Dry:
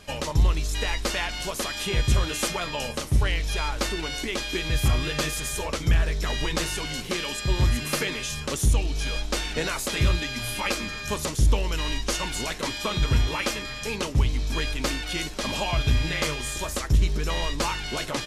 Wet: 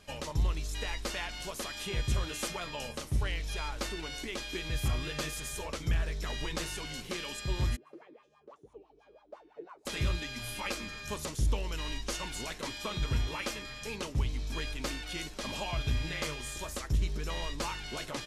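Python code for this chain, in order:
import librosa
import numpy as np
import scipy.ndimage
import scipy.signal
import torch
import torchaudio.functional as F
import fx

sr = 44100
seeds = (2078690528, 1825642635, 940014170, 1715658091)

y = fx.wah_lfo(x, sr, hz=6.0, low_hz=330.0, high_hz=1100.0, q=9.6, at=(7.75, 9.85), fade=0.02)
y = F.gain(torch.from_numpy(y), -9.0).numpy()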